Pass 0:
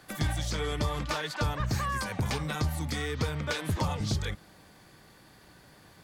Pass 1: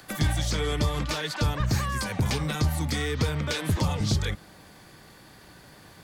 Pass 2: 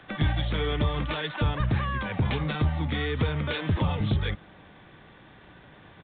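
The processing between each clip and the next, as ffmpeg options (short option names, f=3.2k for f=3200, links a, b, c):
-filter_complex "[0:a]acrossover=split=490|2100[a][b][c];[b]alimiter=level_in=10.5dB:limit=-24dB:level=0:latency=1,volume=-10.5dB[d];[c]acompressor=mode=upward:threshold=-59dB:ratio=2.5[e];[a][d][e]amix=inputs=3:normalize=0,volume=5dB"
-af "aresample=8000,aresample=44100"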